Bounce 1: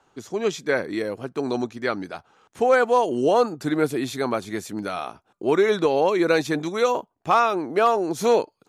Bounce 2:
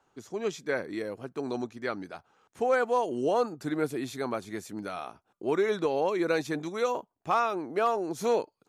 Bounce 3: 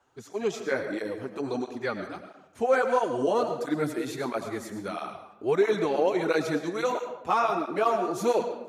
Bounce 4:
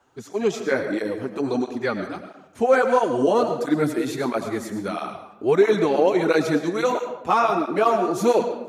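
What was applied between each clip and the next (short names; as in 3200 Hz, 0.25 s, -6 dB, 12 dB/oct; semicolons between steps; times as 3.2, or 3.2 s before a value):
bell 3500 Hz -2 dB; gain -7.5 dB
on a send at -7 dB: reverb RT60 0.90 s, pre-delay 65 ms; on the sum: tape flanging out of phase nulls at 1.5 Hz, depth 7.9 ms; gain +4.5 dB
bell 230 Hz +3.5 dB 1.3 oct; gain +5 dB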